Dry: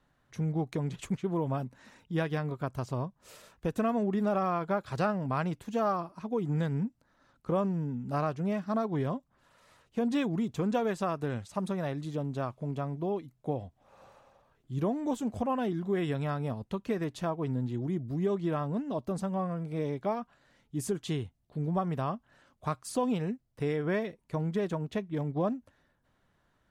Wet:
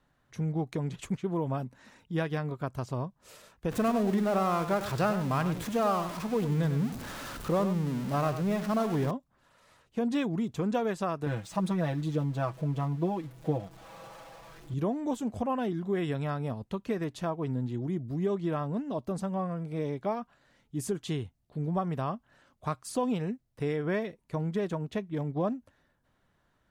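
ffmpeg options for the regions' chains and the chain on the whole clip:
-filter_complex "[0:a]asettb=1/sr,asplit=3[a][b][c];[a]atrim=end=3.714[d];[b]atrim=start=3.71:end=9.11,asetpts=PTS-STARTPTS,afade=t=in:d=0.004:c=qsin,afade=t=out:st=5.396:d=0.004:c=qsin,aeval=exprs='val(0)+0.5*0.0178*sgn(val(0))':c=same,aecho=1:1:99:0.299,atrim=end_sample=238140[e];[c]atrim=start=9.106[f];[d][e]acrossfade=d=0.004:c1=hsin:c2=qsin[g];[g][f]acrossfade=d=0.004:c1=qsin:c2=hsin,asettb=1/sr,asplit=3[h][i][j];[h]atrim=end=11.264[k];[i]atrim=start=11.26:end=14.74,asetpts=PTS-STARTPTS,afade=t=in:d=0.004:c=qsin,afade=t=out:st=3.476:d=0.004:c=qsin,aeval=exprs='val(0)+0.5*0.00398*sgn(val(0))':c=same,highshelf=f=8.6k:g=-4.5,aecho=1:1:6.1:0.84,atrim=end_sample=153468[l];[j]atrim=start=14.736[m];[k][l]acrossfade=d=0.004:c1=hsin:c2=qsin[n];[n][m]acrossfade=d=0.004:c1=qsin:c2=hsin"

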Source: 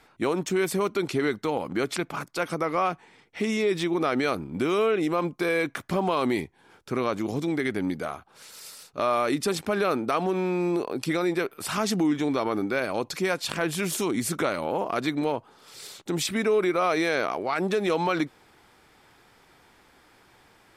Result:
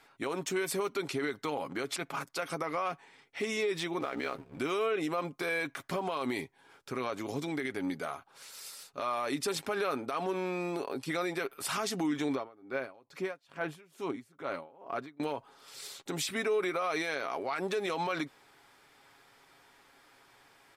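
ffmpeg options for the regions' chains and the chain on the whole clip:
-filter_complex "[0:a]asettb=1/sr,asplit=3[a][b][c];[a]atrim=end=4.004[d];[b]atrim=start=4:end=4.59,asetpts=PTS-STARTPTS,afade=t=in:d=0.004:c=qsin,afade=t=out:st=0.586:d=0.004:c=qsin,aeval=exprs='val(0)*sin(2*PI*33*n/s)':c=same,acrossover=split=4200[e][f];[f]acompressor=threshold=-56dB:ratio=4:attack=1:release=60[g];[e][g]amix=inputs=2:normalize=0,aeval=exprs='sgn(val(0))*max(abs(val(0))-0.00473,0)':c=same[h];[c]atrim=start=4.586[i];[d][h]acrossfade=d=0.004:c1=hsin:c2=qsin[j];[j][i]acrossfade=d=0.004:c1=qsin:c2=hsin,asettb=1/sr,asplit=3[k][l][m];[k]atrim=end=12.354[n];[l]atrim=start=12.35:end=15.2,asetpts=PTS-STARTPTS,afade=t=in:d=0.004:c=qsin,afade=t=out:st=2.846:d=0.004:c=qsin,equalizer=f=9.1k:t=o:w=2.8:g=-13,aeval=exprs='val(0)*pow(10,-26*(0.5-0.5*cos(2*PI*2.3*n/s))/20)':c=same[o];[m]atrim=start=15.196[p];[n][o]acrossfade=d=0.004:c1=hsin:c2=qsin[q];[q][p]acrossfade=d=0.004:c1=qsin:c2=hsin,lowshelf=f=320:g=-9,aecho=1:1:7.3:0.4,alimiter=limit=-20.5dB:level=0:latency=1:release=58,volume=-3dB"

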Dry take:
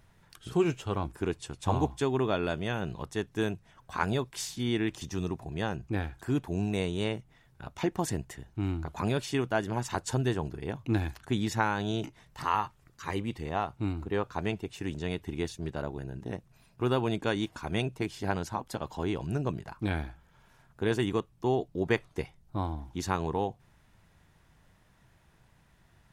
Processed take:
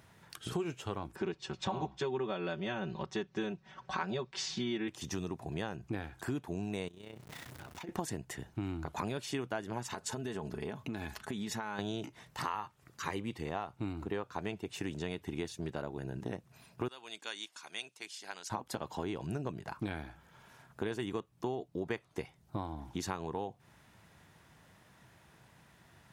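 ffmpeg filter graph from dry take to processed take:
-filter_complex "[0:a]asettb=1/sr,asplit=3[a][b][c];[a]atrim=end=1.164[d];[b]atrim=start=1.16:end=4.88,asetpts=PTS-STARTPTS,afade=t=in:d=0.004:c=qsin,afade=t=out:st=3.716:d=0.004:c=qsin,lowpass=f=5.7k:w=0.5412,lowpass=f=5.7k:w=1.3066,aecho=1:1:5.3:0.97,atrim=end_sample=164052[e];[c]atrim=start=4.876[f];[d][e]acrossfade=d=0.004:c1=hsin:c2=qsin[g];[g][f]acrossfade=d=0.004:c1=qsin:c2=hsin,asettb=1/sr,asplit=3[h][i][j];[h]atrim=end=6.884[k];[i]atrim=start=6.88:end=7.89,asetpts=PTS-STARTPTS,afade=t=in:d=0.004:c=qsin,afade=t=out:st=1.006:d=0.004:c=qsin,aeval=exprs='val(0)+0.5*0.00708*sgn(val(0))':c=same,tremolo=f=31:d=0.667,acompressor=threshold=-48dB:ratio=6:attack=3.2:release=140:knee=1:detection=peak[l];[j]atrim=start=7.886[m];[k][l]acrossfade=d=0.004:c1=hsin:c2=qsin[n];[n][m]acrossfade=d=0.004:c1=qsin:c2=hsin,asettb=1/sr,asplit=3[o][p][q];[o]atrim=end=9.934[r];[p]atrim=start=9.93:end=11.79,asetpts=PTS-STARTPTS,afade=t=in:d=0.004:c=qsin,afade=t=out:st=1.856:d=0.004:c=qsin,aecho=1:1:4.7:0.46,atrim=end_sample=82026,acompressor=threshold=-36dB:ratio=6:attack=3.2:release=140:knee=1:detection=peak[s];[q]atrim=start=11.786[t];[r][s]acrossfade=d=0.004:c1=hsin:c2=qsin[u];[u][t]acrossfade=d=0.004:c1=qsin:c2=hsin,asettb=1/sr,asplit=3[v][w][x];[v]atrim=end=16.884[y];[w]atrim=start=16.88:end=18.5,asetpts=PTS-STARTPTS,afade=t=in:d=0.004:c=qsin,afade=t=out:st=1.616:d=0.004:c=qsin,highpass=110,lowpass=7.2k,aderivative[z];[x]atrim=start=18.496[aa];[y][z]acrossfade=d=0.004:c1=hsin:c2=qsin[ab];[ab][aa]acrossfade=d=0.004:c1=qsin:c2=hsin,highpass=68,lowshelf=f=100:g=-8,acompressor=threshold=-39dB:ratio=5,volume=4.5dB"

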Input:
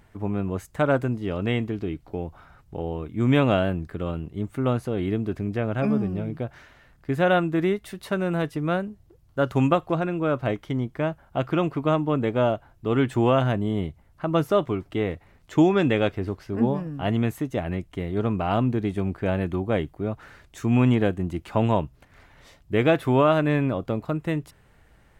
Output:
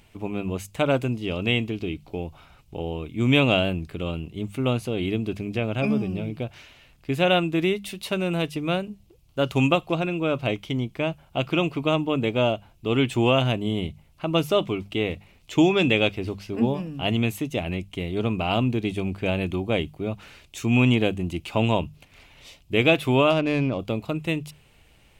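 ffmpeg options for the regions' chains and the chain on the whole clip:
-filter_complex "[0:a]asettb=1/sr,asplit=3[a][b][c];[a]atrim=end=23.304[d];[b]atrim=start=23.3:end=23.79,asetpts=PTS-STARTPTS,afade=t=in:d=0.004:c=qsin,afade=t=out:st=0.486:d=0.004:c=qsin,lowpass=5.3k,highshelf=f=3.6k:g=-11,adynamicsmooth=sensitivity=7:basefreq=2.8k[e];[c]atrim=start=23.786[f];[d][e]acrossfade=d=0.004:c1=hsin:c2=qsin[g];[g][f]acrossfade=d=0.004:c1=qsin:c2=hsin,highshelf=f=2.1k:t=q:w=3:g=6,bandreject=f=50:t=h:w=6,bandreject=f=100:t=h:w=6,bandreject=f=150:t=h:w=6,bandreject=f=200:t=h:w=6"

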